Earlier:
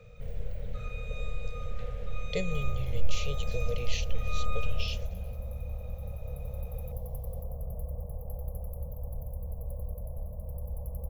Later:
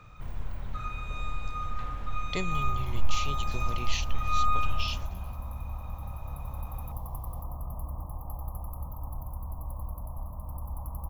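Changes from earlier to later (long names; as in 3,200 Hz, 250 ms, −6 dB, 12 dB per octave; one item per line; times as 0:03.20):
second sound: remove Butterworth band-reject 1,700 Hz, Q 1.1
master: remove drawn EQ curve 210 Hz 0 dB, 320 Hz −24 dB, 470 Hz +15 dB, 970 Hz −18 dB, 2,100 Hz −3 dB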